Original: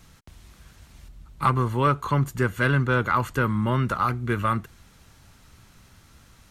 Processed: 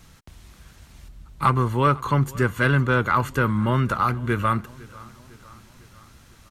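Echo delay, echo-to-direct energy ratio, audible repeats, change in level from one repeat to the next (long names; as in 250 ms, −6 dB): 503 ms, −20.5 dB, 3, −5.0 dB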